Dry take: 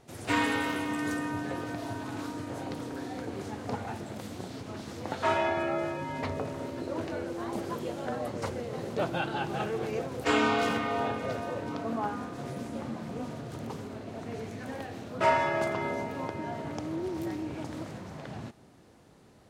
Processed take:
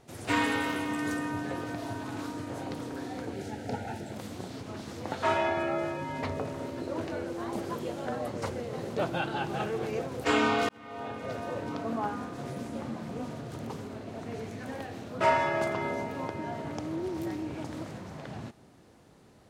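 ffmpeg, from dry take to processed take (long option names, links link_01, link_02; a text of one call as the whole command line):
ffmpeg -i in.wav -filter_complex "[0:a]asettb=1/sr,asplit=3[link_01][link_02][link_03];[link_01]atrim=end=3.334[link_04];[link_02]atrim=start=3.33:end=4.13,asetpts=PTS-STARTPTS,afade=type=in:duration=0.004:curve=qsin,afade=type=out:start_time=0.796:duration=0.004:curve=qsin,asuperstop=centerf=1100:order=12:qfactor=3.1[link_05];[link_03]atrim=start=4.126[link_06];[link_04][link_05]acrossfade=duration=0.004:curve1=hsin:curve2=qsin[link_07];[link_07][link_06]acrossfade=duration=0.004:curve1=qsin:curve2=hsin,asplit=2[link_08][link_09];[link_08]atrim=end=10.69,asetpts=PTS-STARTPTS,afade=type=out:start_time=10.686:duration=0.004:curve=hsin[link_10];[link_09]atrim=start=10.69,asetpts=PTS-STARTPTS,afade=type=in:duration=0.86[link_11];[link_10][link_11]concat=n=2:v=0:a=1" out.wav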